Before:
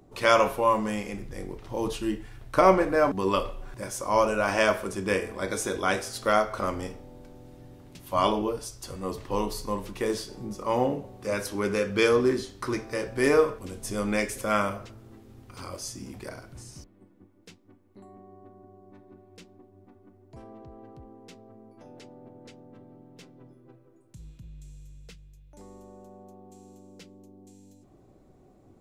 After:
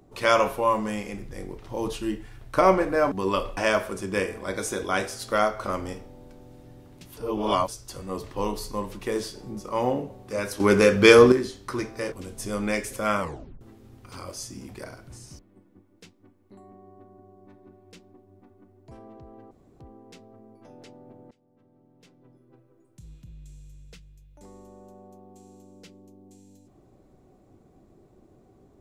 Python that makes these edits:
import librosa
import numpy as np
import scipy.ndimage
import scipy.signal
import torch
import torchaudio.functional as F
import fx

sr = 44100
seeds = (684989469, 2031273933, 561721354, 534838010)

y = fx.edit(x, sr, fx.cut(start_s=3.57, length_s=0.94),
    fx.reverse_span(start_s=8.11, length_s=0.51),
    fx.clip_gain(start_s=11.54, length_s=0.72, db=9.0),
    fx.cut(start_s=13.06, length_s=0.51),
    fx.tape_stop(start_s=14.65, length_s=0.41),
    fx.insert_room_tone(at_s=20.96, length_s=0.29),
    fx.fade_in_from(start_s=22.47, length_s=1.86, floor_db=-21.5), tone=tone)